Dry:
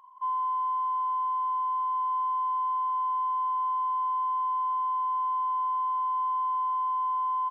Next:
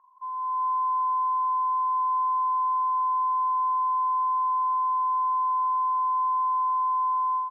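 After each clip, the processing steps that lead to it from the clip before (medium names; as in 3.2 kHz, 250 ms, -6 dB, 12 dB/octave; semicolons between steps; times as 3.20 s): low-pass 1.7 kHz 24 dB/octave; level rider gain up to 9.5 dB; trim -6 dB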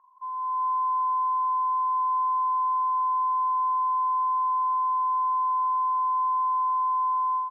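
no audible change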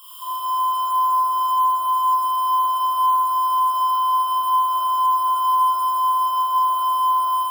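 zero-crossing glitches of -36.5 dBFS; static phaser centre 1.3 kHz, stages 8; Schroeder reverb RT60 2.2 s, combs from 26 ms, DRR -7.5 dB; trim +6.5 dB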